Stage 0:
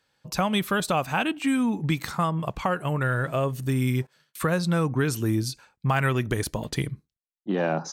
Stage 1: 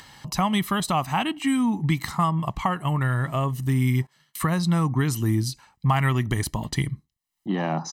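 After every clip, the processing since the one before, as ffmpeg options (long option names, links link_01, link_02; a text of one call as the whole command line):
ffmpeg -i in.wav -af "aecho=1:1:1:0.64,acompressor=mode=upward:threshold=-30dB:ratio=2.5" out.wav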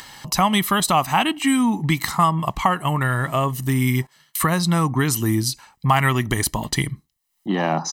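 ffmpeg -i in.wav -af "equalizer=frequency=97:width=0.51:gain=-6.5,crystalizer=i=0.5:c=0,volume=6.5dB" out.wav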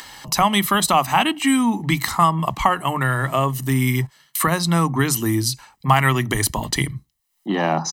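ffmpeg -i in.wav -filter_complex "[0:a]acrossover=split=160[link_01][link_02];[link_01]adelay=30[link_03];[link_03][link_02]amix=inputs=2:normalize=0,volume=1.5dB" out.wav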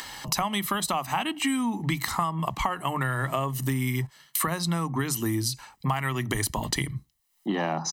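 ffmpeg -i in.wav -af "acompressor=threshold=-24dB:ratio=6" out.wav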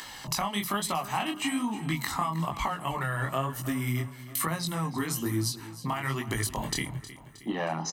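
ffmpeg -i in.wav -af "flanger=delay=18:depth=7.9:speed=1.1,aecho=1:1:314|628|942|1256|1570:0.168|0.0873|0.0454|0.0236|0.0123" out.wav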